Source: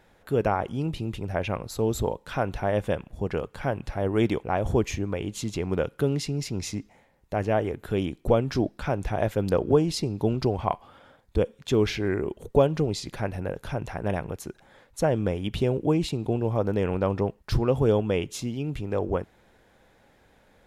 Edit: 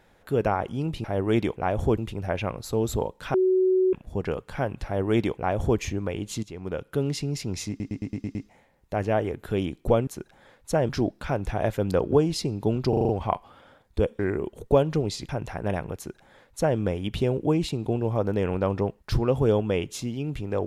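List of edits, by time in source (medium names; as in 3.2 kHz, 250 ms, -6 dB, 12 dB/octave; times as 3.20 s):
2.40–2.99 s: bleep 373 Hz -17.5 dBFS
3.91–4.85 s: copy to 1.04 s
5.49–6.21 s: fade in, from -13.5 dB
6.75 s: stutter 0.11 s, 7 plays
10.47 s: stutter 0.04 s, 6 plays
11.57–12.03 s: delete
13.13–13.69 s: delete
14.36–15.18 s: copy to 8.47 s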